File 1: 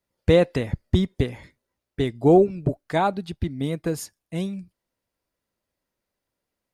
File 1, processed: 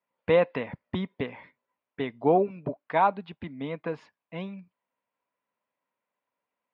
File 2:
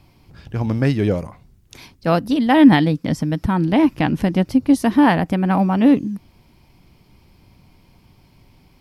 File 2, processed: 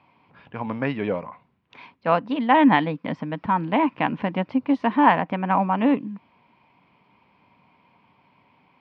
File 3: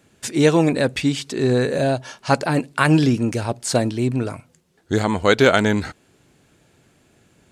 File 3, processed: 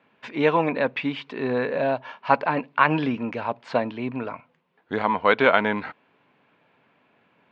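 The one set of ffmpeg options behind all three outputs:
ffmpeg -i in.wav -af "highpass=250,equalizer=frequency=350:width_type=q:width=4:gain=-9,equalizer=frequency=1000:width_type=q:width=4:gain=9,equalizer=frequency=2400:width_type=q:width=4:gain=3,lowpass=frequency=3000:width=0.5412,lowpass=frequency=3000:width=1.3066,volume=-2.5dB" out.wav

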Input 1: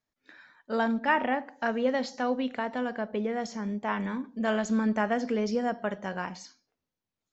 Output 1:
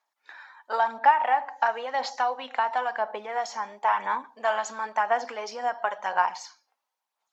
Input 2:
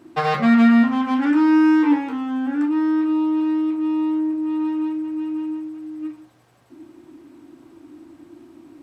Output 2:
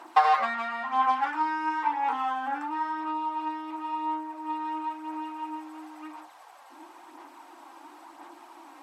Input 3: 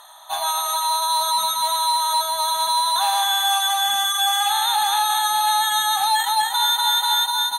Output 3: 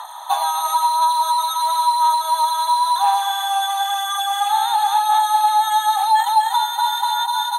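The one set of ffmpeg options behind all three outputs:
ffmpeg -i in.wav -af "acompressor=threshold=-27dB:ratio=12,aphaser=in_gain=1:out_gain=1:delay=3.8:decay=0.36:speed=0.97:type=sinusoidal,highpass=frequency=870:width_type=q:width=3.7,volume=4dB" -ar 48000 -c:a libmp3lame -b:a 80k out.mp3

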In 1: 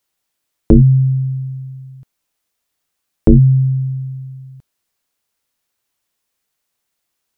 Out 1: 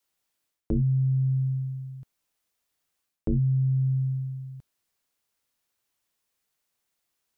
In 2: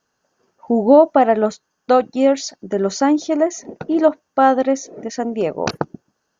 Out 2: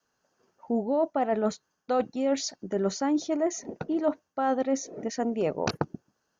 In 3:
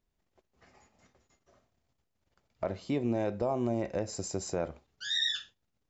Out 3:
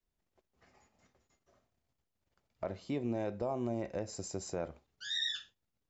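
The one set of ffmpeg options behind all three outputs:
ffmpeg -i in.wav -af "adynamicequalizer=threshold=0.0447:dfrequency=100:dqfactor=0.71:tfrequency=100:tqfactor=0.71:attack=5:release=100:ratio=0.375:range=2:mode=boostabove:tftype=bell,areverse,acompressor=threshold=-17dB:ratio=10,areverse,volume=-5dB" out.wav

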